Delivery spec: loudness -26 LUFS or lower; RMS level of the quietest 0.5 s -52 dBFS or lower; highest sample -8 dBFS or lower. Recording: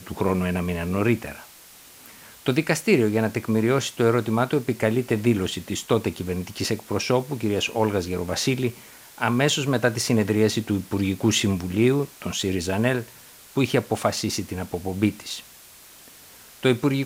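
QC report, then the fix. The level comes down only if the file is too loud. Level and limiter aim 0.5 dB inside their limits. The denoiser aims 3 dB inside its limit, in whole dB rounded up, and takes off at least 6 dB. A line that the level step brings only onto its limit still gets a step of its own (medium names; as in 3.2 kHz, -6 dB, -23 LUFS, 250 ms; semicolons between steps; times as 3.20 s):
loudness -24.0 LUFS: fail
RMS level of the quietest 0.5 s -48 dBFS: fail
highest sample -6.0 dBFS: fail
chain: noise reduction 6 dB, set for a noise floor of -48 dBFS; trim -2.5 dB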